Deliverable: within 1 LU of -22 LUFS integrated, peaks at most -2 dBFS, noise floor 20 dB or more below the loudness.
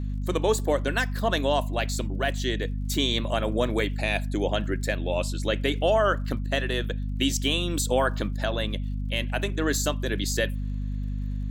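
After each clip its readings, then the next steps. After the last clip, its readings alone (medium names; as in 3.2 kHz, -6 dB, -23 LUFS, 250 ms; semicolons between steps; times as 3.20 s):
tick rate 43 per s; hum 50 Hz; highest harmonic 250 Hz; hum level -27 dBFS; loudness -26.5 LUFS; peak level -11.0 dBFS; loudness target -22.0 LUFS
-> de-click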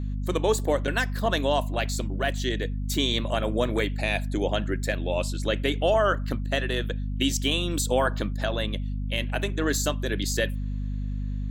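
tick rate 1.0 per s; hum 50 Hz; highest harmonic 250 Hz; hum level -27 dBFS
-> hum notches 50/100/150/200/250 Hz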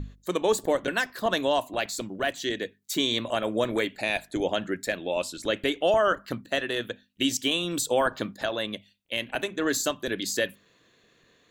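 hum not found; loudness -27.5 LUFS; peak level -12.0 dBFS; loudness target -22.0 LUFS
-> trim +5.5 dB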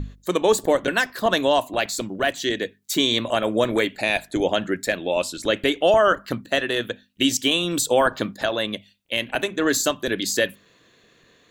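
loudness -22.0 LUFS; peak level -6.5 dBFS; noise floor -58 dBFS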